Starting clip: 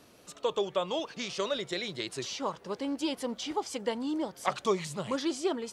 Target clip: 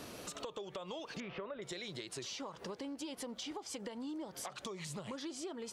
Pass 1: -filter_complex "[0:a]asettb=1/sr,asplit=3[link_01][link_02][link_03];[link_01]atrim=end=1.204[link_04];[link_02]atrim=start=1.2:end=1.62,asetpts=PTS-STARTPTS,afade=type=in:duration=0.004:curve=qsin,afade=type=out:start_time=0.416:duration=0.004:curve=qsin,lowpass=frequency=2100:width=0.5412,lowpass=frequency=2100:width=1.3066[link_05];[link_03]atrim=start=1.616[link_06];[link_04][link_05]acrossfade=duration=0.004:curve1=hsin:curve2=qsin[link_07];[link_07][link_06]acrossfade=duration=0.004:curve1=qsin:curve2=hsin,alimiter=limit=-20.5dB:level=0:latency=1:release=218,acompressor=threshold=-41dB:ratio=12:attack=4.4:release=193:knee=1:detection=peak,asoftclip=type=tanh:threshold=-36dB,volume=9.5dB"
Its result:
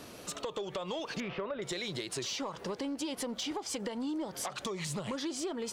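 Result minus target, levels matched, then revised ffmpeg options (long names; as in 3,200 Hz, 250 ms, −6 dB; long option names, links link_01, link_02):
downward compressor: peak gain reduction −8 dB
-filter_complex "[0:a]asettb=1/sr,asplit=3[link_01][link_02][link_03];[link_01]atrim=end=1.204[link_04];[link_02]atrim=start=1.2:end=1.62,asetpts=PTS-STARTPTS,afade=type=in:duration=0.004:curve=qsin,afade=type=out:start_time=0.416:duration=0.004:curve=qsin,lowpass=frequency=2100:width=0.5412,lowpass=frequency=2100:width=1.3066[link_05];[link_03]atrim=start=1.616[link_06];[link_04][link_05]acrossfade=duration=0.004:curve1=hsin:curve2=qsin[link_07];[link_07][link_06]acrossfade=duration=0.004:curve1=qsin:curve2=hsin,alimiter=limit=-20.5dB:level=0:latency=1:release=218,acompressor=threshold=-49.5dB:ratio=12:attack=4.4:release=193:knee=1:detection=peak,asoftclip=type=tanh:threshold=-36dB,volume=9.5dB"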